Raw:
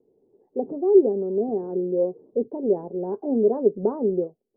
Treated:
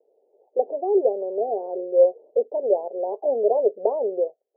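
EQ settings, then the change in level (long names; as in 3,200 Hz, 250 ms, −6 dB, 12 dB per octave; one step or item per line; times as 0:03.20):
flat-topped band-pass 640 Hz, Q 1.5
parametric band 630 Hz +12 dB 0.8 octaves
0.0 dB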